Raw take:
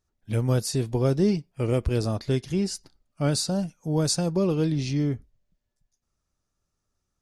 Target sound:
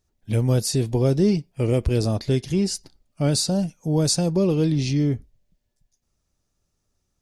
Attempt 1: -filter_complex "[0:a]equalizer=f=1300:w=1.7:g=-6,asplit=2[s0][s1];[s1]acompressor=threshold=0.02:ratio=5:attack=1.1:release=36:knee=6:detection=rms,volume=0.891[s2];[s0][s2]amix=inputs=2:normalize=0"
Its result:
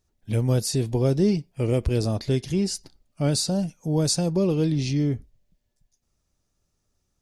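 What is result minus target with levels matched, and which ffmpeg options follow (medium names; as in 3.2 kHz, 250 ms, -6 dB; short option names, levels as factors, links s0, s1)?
compression: peak gain reduction +8.5 dB
-filter_complex "[0:a]equalizer=f=1300:w=1.7:g=-6,asplit=2[s0][s1];[s1]acompressor=threshold=0.0668:ratio=5:attack=1.1:release=36:knee=6:detection=rms,volume=0.891[s2];[s0][s2]amix=inputs=2:normalize=0"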